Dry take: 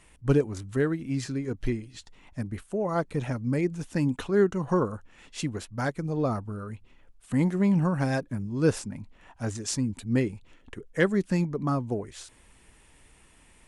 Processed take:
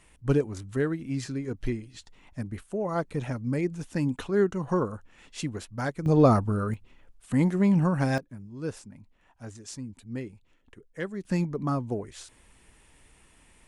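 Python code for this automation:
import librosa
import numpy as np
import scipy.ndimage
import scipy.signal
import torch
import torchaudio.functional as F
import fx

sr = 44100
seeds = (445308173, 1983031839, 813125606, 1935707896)

y = fx.gain(x, sr, db=fx.steps((0.0, -1.5), (6.06, 8.5), (6.74, 1.0), (8.18, -10.5), (11.25, -1.0)))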